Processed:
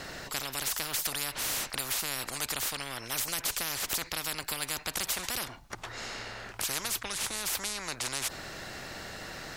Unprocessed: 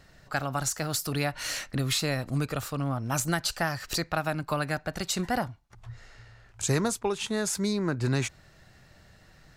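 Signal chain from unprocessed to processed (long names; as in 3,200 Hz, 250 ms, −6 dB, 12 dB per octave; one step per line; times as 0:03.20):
every bin compressed towards the loudest bin 10 to 1
level −2 dB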